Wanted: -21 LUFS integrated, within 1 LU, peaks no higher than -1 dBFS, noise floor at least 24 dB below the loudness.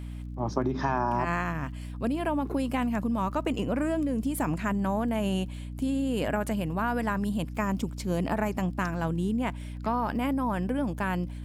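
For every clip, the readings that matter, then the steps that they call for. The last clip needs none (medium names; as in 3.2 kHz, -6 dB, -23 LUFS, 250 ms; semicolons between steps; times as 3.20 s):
tick rate 38 per s; hum 60 Hz; highest harmonic 300 Hz; hum level -35 dBFS; loudness -29.5 LUFS; peak level -12.5 dBFS; loudness target -21.0 LUFS
-> de-click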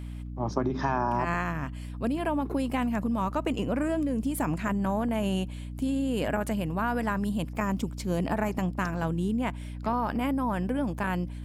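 tick rate 0.17 per s; hum 60 Hz; highest harmonic 300 Hz; hum level -35 dBFS
-> de-hum 60 Hz, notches 5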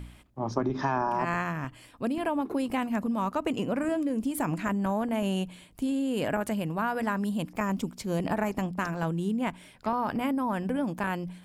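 hum not found; loudness -30.0 LUFS; peak level -12.0 dBFS; loudness target -21.0 LUFS
-> trim +9 dB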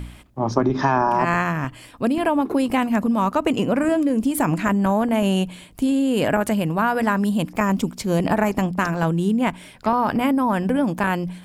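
loudness -21.0 LUFS; peak level -3.0 dBFS; noise floor -45 dBFS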